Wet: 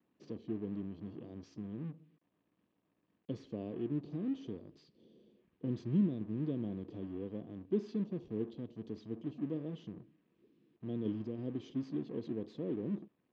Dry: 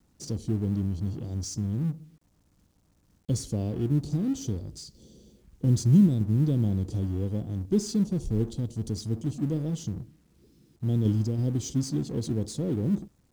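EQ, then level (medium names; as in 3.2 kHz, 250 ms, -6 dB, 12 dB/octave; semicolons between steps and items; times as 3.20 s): cabinet simulation 290–2800 Hz, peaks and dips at 540 Hz -3 dB, 820 Hz -7 dB, 1.4 kHz -5 dB, 2.1 kHz -4 dB; band-stop 1.4 kHz, Q 16; -4.0 dB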